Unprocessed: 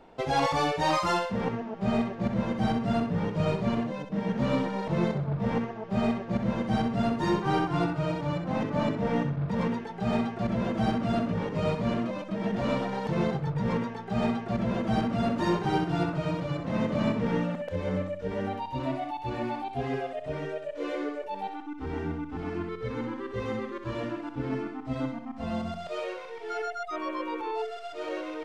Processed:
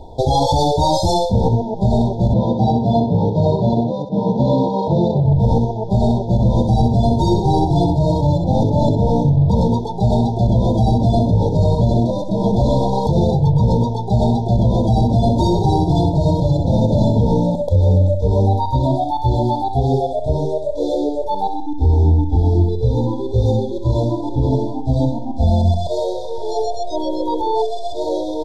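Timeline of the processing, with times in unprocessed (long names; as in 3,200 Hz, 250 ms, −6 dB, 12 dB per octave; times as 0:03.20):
0:02.33–0:05.25: band-pass filter 150–3,800 Hz
0:23.65–0:24.23: delay throw 580 ms, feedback 35%, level −10 dB
0:25.87–0:26.34: delay throw 240 ms, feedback 85%, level −14 dB
whole clip: low shelf with overshoot 130 Hz +12 dB, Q 1.5; brick-wall band-stop 1,000–3,300 Hz; boost into a limiter +20 dB; level −5.5 dB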